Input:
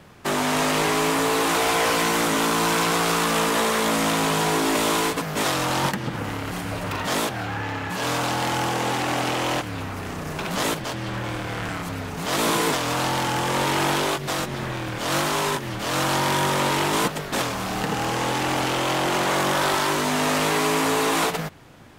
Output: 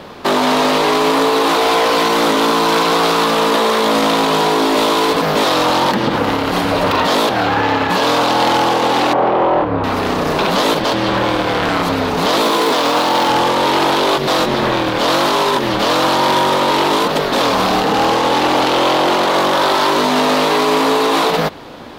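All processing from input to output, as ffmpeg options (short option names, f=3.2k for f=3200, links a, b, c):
-filter_complex "[0:a]asettb=1/sr,asplit=3[a][b][c];[a]atrim=end=9.134[d];[b]atrim=start=9.13:end=9.84,asetpts=PTS-STARTPTS,afade=t=in:d=0.004:c=qsin,afade=t=out:st=0.706:d=0.004:c=qsin,lowpass=1.2k,equalizer=f=250:w=6.2:g=-7.5,asplit=2[e][f];[f]adelay=29,volume=-5.5dB[g];[e][g]amix=inputs=2:normalize=0,atrim=end_sample=31311[h];[c]atrim=start=9.836[i];[d][h]acrossfade=d=0.004:c1=hsin:c2=qsin[j];[j][i]acrossfade=d=0.004:c1=qsin:c2=hsin,asettb=1/sr,asplit=3[k][l][m];[k]atrim=end=12.424[n];[l]atrim=start=12.42:end=13.3,asetpts=PTS-STARTPTS,afade=t=in:d=0.004:c=qsin,afade=t=out:st=0.876:d=0.004:c=qsin,highpass=170,acrusher=bits=4:mode=log:mix=0:aa=0.000001[o];[m]atrim=start=13.296[p];[n][o]acrossfade=d=0.004:c1=hsin:c2=qsin[q];[q][p]acrossfade=d=0.004:c1=qsin:c2=hsin,equalizer=f=125:t=o:w=1:g=-5,equalizer=f=250:t=o:w=1:g=6,equalizer=f=500:t=o:w=1:g=8,equalizer=f=1k:t=o:w=1:g=7,equalizer=f=4k:t=o:w=1:g=10,equalizer=f=8k:t=o:w=1:g=-5,alimiter=limit=-14.5dB:level=0:latency=1:release=32,volume=8.5dB"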